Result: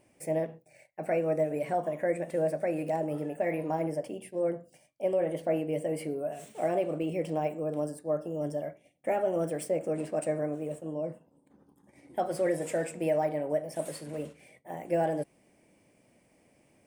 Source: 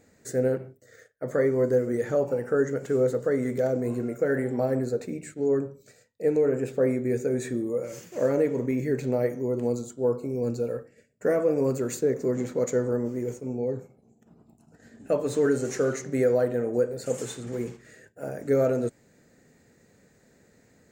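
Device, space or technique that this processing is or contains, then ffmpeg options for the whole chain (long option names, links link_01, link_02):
nightcore: -af "asetrate=54684,aresample=44100,volume=-5dB"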